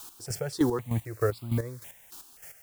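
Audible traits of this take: a quantiser's noise floor 8-bit, dither triangular; chopped level 3.3 Hz, depth 65%, duty 30%; notches that jump at a steady rate 3.8 Hz 550–1700 Hz

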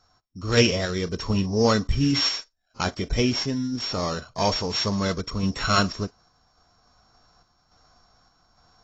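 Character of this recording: a buzz of ramps at a fixed pitch in blocks of 8 samples; random-step tremolo; AAC

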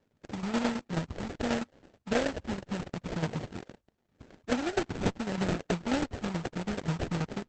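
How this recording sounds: aliases and images of a low sample rate 1.1 kHz, jitter 20%; tremolo saw down 9.3 Hz, depth 70%; Opus

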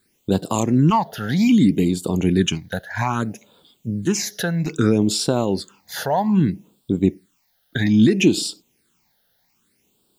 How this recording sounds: a quantiser's noise floor 12-bit, dither triangular; phasing stages 8, 0.62 Hz, lowest notch 310–2000 Hz

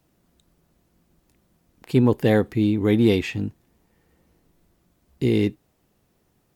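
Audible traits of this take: noise floor -67 dBFS; spectral tilt -7.0 dB/octave

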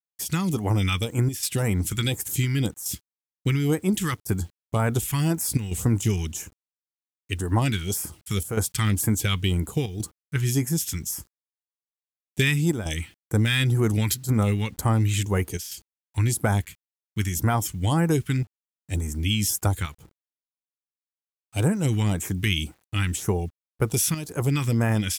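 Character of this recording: phasing stages 2, 1.9 Hz, lowest notch 590–3400 Hz; chopped level 0.7 Hz, depth 60%, duty 90%; a quantiser's noise floor 10-bit, dither none

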